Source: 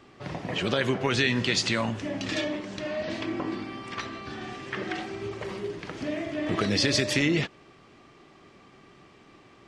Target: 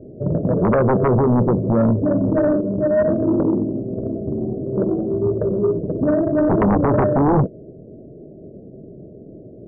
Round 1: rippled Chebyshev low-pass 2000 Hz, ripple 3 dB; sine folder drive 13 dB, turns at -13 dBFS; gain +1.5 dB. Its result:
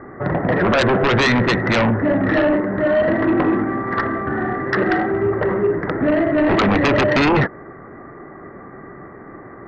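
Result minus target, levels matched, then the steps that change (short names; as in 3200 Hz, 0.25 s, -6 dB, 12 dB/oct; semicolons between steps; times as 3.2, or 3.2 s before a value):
2000 Hz band +15.0 dB
change: rippled Chebyshev low-pass 650 Hz, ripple 3 dB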